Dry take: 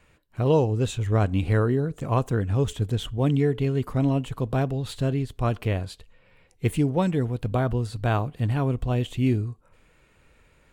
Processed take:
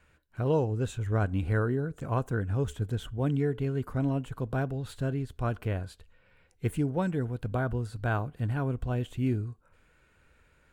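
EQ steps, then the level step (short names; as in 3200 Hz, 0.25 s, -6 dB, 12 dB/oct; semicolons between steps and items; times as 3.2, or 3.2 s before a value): bell 74 Hz +7 dB 0.27 oct; bell 1500 Hz +9 dB 0.26 oct; dynamic EQ 3800 Hz, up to -5 dB, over -47 dBFS, Q 0.72; -6.0 dB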